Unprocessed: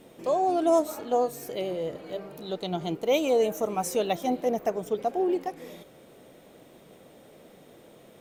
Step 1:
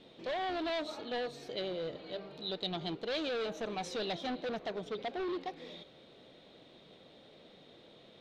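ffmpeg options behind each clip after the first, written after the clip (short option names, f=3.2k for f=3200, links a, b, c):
-af "asoftclip=type=hard:threshold=-27.5dB,lowpass=f=3.9k:t=q:w=4.4,volume=-6.5dB"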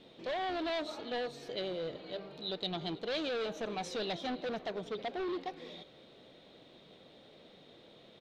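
-af "aecho=1:1:320:0.0841"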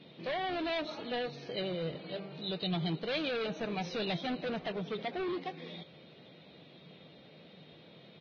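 -af "equalizer=f=160:t=o:w=0.67:g=11,equalizer=f=2.5k:t=o:w=0.67:g=5,equalizer=f=6.3k:t=o:w=0.67:g=-8" -ar 16000 -c:a libvorbis -b:a 16k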